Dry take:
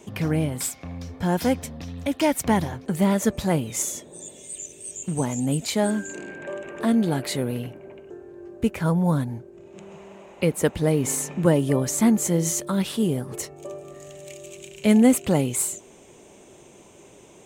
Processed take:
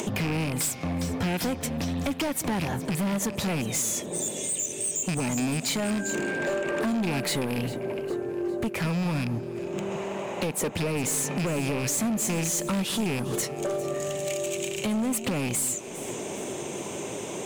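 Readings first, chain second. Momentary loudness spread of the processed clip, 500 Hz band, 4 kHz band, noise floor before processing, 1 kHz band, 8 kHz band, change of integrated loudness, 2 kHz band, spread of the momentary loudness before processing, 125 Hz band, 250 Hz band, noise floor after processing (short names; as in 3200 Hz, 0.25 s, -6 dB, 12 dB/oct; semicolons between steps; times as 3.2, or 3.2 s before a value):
7 LU, -3.5 dB, +2.0 dB, -50 dBFS, -3.0 dB, +0.5 dB, -4.5 dB, +2.0 dB, 19 LU, -4.0 dB, -5.5 dB, -36 dBFS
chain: rattling part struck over -26 dBFS, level -20 dBFS; HPF 110 Hz 12 dB/oct; in parallel at +2 dB: upward compressor, threshold -26 dBFS; on the sum: limiter -8.5 dBFS, peak gain reduction 9.5 dB; compressor, threshold -21 dBFS, peak gain reduction 9 dB; hard clip -24 dBFS, distortion -10 dB; on a send: echo with dull and thin repeats by turns 0.202 s, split 1000 Hz, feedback 68%, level -13 dB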